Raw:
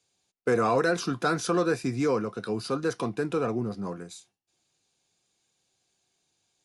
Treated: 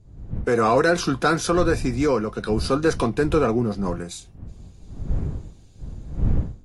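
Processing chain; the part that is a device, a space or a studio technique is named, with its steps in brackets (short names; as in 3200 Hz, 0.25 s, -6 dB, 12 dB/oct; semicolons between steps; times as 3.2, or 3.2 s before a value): smartphone video outdoors (wind noise 99 Hz -35 dBFS; AGC gain up to 15 dB; gain -5.5 dB; AAC 48 kbps 44100 Hz)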